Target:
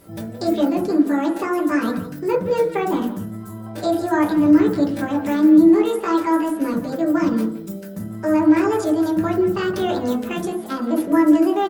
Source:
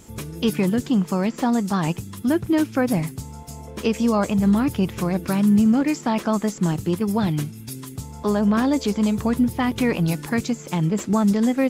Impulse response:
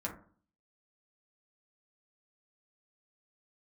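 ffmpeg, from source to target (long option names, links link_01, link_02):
-filter_complex "[0:a]asetrate=66075,aresample=44100,atempo=0.66742,asplit=2[link_01][link_02];[link_02]adelay=170,highpass=300,lowpass=3400,asoftclip=type=hard:threshold=-17dB,volume=-11dB[link_03];[link_01][link_03]amix=inputs=2:normalize=0[link_04];[1:a]atrim=start_sample=2205[link_05];[link_04][link_05]afir=irnorm=-1:irlink=0,volume=-2dB"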